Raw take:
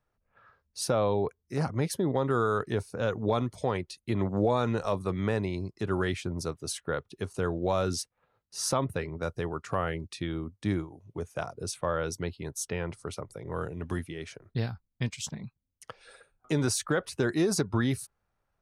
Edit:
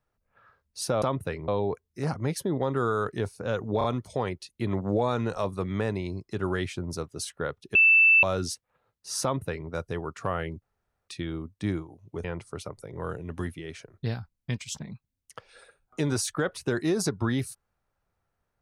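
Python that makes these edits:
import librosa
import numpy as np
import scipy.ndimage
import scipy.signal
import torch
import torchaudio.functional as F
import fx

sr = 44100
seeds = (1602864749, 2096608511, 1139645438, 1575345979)

y = fx.edit(x, sr, fx.stutter(start_s=3.32, slice_s=0.03, count=3),
    fx.bleep(start_s=7.23, length_s=0.48, hz=2650.0, db=-14.5),
    fx.duplicate(start_s=8.71, length_s=0.46, to_s=1.02),
    fx.insert_room_tone(at_s=10.1, length_s=0.46),
    fx.cut(start_s=11.26, length_s=1.5), tone=tone)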